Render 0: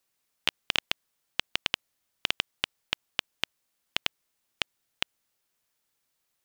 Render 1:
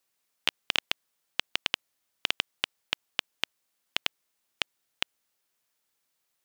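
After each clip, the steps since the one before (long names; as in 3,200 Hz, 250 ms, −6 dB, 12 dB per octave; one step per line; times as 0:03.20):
low-shelf EQ 140 Hz −8 dB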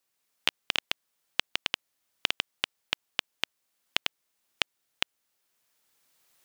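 camcorder AGC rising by 9.8 dB per second
level −2 dB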